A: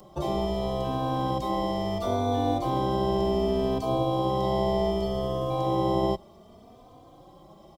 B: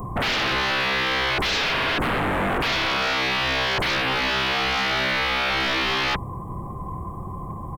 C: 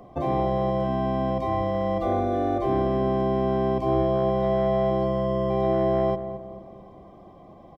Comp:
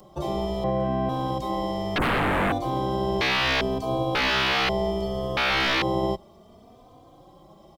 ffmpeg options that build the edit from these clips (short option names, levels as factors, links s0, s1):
-filter_complex "[1:a]asplit=4[s0][s1][s2][s3];[0:a]asplit=6[s4][s5][s6][s7][s8][s9];[s4]atrim=end=0.642[s10];[2:a]atrim=start=0.638:end=1.092[s11];[s5]atrim=start=1.088:end=1.962[s12];[s0]atrim=start=1.958:end=2.522[s13];[s6]atrim=start=2.518:end=3.212[s14];[s1]atrim=start=3.208:end=3.612[s15];[s7]atrim=start=3.608:end=4.152[s16];[s2]atrim=start=4.148:end=4.692[s17];[s8]atrim=start=4.688:end=5.372[s18];[s3]atrim=start=5.368:end=5.822[s19];[s9]atrim=start=5.818[s20];[s10][s11]acrossfade=d=0.004:c1=hsin:c2=hsin[s21];[s21][s12]acrossfade=d=0.004:c1=hsin:c2=hsin[s22];[s22][s13]acrossfade=d=0.004:c1=hsin:c2=hsin[s23];[s23][s14]acrossfade=d=0.004:c1=hsin:c2=hsin[s24];[s24][s15]acrossfade=d=0.004:c1=hsin:c2=hsin[s25];[s25][s16]acrossfade=d=0.004:c1=hsin:c2=hsin[s26];[s26][s17]acrossfade=d=0.004:c1=hsin:c2=hsin[s27];[s27][s18]acrossfade=d=0.004:c1=hsin:c2=hsin[s28];[s28][s19]acrossfade=d=0.004:c1=hsin:c2=hsin[s29];[s29][s20]acrossfade=d=0.004:c1=hsin:c2=hsin"